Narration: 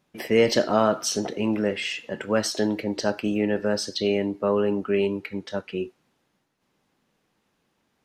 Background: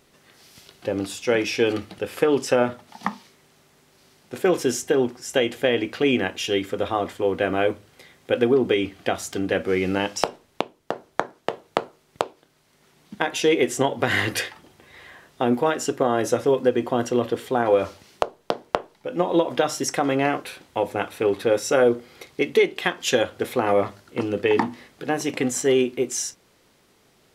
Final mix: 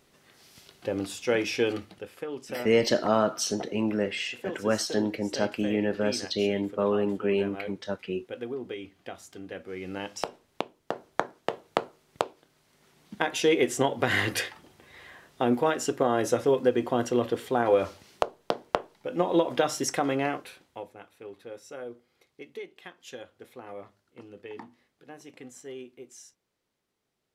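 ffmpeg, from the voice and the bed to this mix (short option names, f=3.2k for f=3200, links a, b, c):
-filter_complex "[0:a]adelay=2350,volume=-3dB[a];[1:a]volume=8.5dB,afade=t=out:st=1.58:d=0.59:silence=0.251189,afade=t=in:st=9.72:d=1.35:silence=0.223872,afade=t=out:st=19.9:d=1.04:silence=0.11885[b];[a][b]amix=inputs=2:normalize=0"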